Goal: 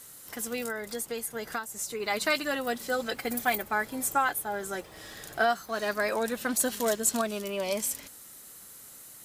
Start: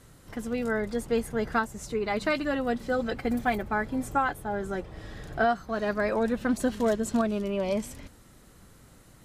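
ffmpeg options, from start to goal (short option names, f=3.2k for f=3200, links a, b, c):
-filter_complex "[0:a]aemphasis=mode=production:type=riaa,asettb=1/sr,asplit=3[a][b][c];[a]atrim=end=0.624[d];[b]atrim=start=0.62:end=2,asetpts=PTS-STARTPTS,afade=t=in:d=0.004:c=qsin,afade=t=out:st=1.376:d=0.004:c=qsin,acompressor=threshold=-31dB:ratio=6[e];[c]atrim=start=1.996[f];[d][e]acrossfade=d=0.004:c1=hsin:c2=qsin[g];[g][f]acrossfade=d=0.004:c1=qsin:c2=hsin"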